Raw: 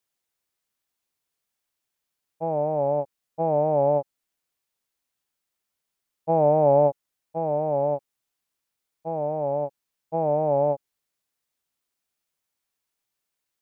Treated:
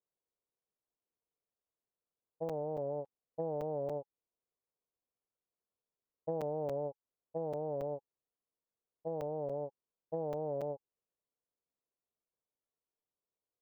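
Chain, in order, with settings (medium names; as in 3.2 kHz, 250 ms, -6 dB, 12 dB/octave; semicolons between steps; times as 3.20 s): low-pass 1.1 kHz 24 dB/octave; peaking EQ 460 Hz +7.5 dB 0.62 oct; band-stop 840 Hz, Q 12; dynamic bell 620 Hz, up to -6 dB, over -32 dBFS, Q 2.6; compression 6:1, threshold -26 dBFS, peak gain reduction 10.5 dB; crackling interface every 0.28 s, samples 256, zero, from 0.53 s; trim -8 dB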